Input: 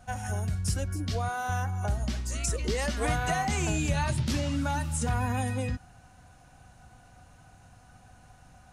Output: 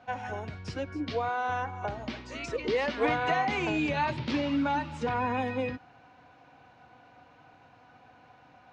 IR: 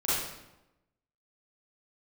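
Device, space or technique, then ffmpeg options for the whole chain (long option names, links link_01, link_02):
kitchen radio: -af "highpass=180,equalizer=frequency=190:width_type=q:width=4:gain=-7,equalizer=frequency=290:width_type=q:width=4:gain=6,equalizer=frequency=480:width_type=q:width=4:gain=6,equalizer=frequency=960:width_type=q:width=4:gain=6,equalizer=frequency=2300:width_type=q:width=4:gain=5,lowpass=frequency=4200:width=0.5412,lowpass=frequency=4200:width=1.3066"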